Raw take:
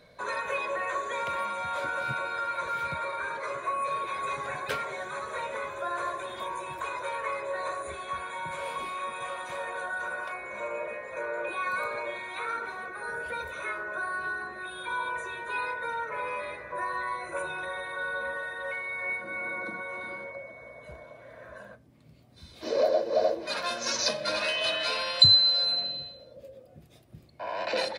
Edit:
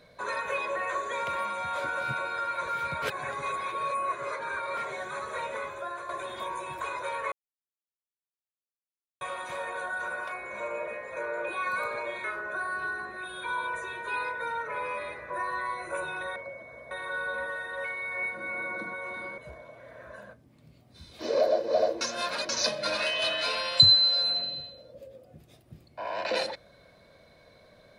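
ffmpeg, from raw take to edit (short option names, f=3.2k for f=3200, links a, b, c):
-filter_complex "[0:a]asplit=12[a][b][c][d][e][f][g][h][i][j][k][l];[a]atrim=end=3.022[m];[b]atrim=start=3.018:end=4.772,asetpts=PTS-STARTPTS,areverse[n];[c]atrim=start=4.768:end=6.09,asetpts=PTS-STARTPTS,afade=t=out:st=0.642:d=0.68:c=qsin:silence=0.316228[o];[d]atrim=start=6.09:end=7.32,asetpts=PTS-STARTPTS,afade=t=in:d=0.004:c=hsin:silence=0.316228,afade=t=out:st=1.226:d=0.004:c=hsin[p];[e]atrim=start=7.32:end=9.21,asetpts=PTS-STARTPTS,volume=0[q];[f]atrim=start=9.21:end=12.242,asetpts=PTS-STARTPTS,afade=t=in:d=0.004:c=hsin[r];[g]atrim=start=13.658:end=17.782[s];[h]atrim=start=20.248:end=20.802[t];[i]atrim=start=17.778:end=20.252[u];[j]atrim=start=20.798:end=23.432[v];[k]atrim=start=23.428:end=23.912,asetpts=PTS-STARTPTS,areverse[w];[l]atrim=start=23.908[x];[m][n]acrossfade=d=0.004:c1=hsin:c2=hsin[y];[o][p][q][r]concat=n=4:v=0:a=1[z];[y][z]acrossfade=d=0.004:c1=hsin:c2=hsin[aa];[aa][s]acrossfade=d=0.004:c1=hsin:c2=hsin[ab];[ab][t]acrossfade=d=0.004:c1=hsin:c2=hsin[ac];[ac][u]acrossfade=d=0.004:c1=hsin:c2=hsin[ad];[ad][v]acrossfade=d=0.004:c1=hsin:c2=hsin[ae];[ae][w]acrossfade=d=0.004:c1=hsin:c2=hsin[af];[af][x]acrossfade=d=0.004:c1=hsin:c2=hsin"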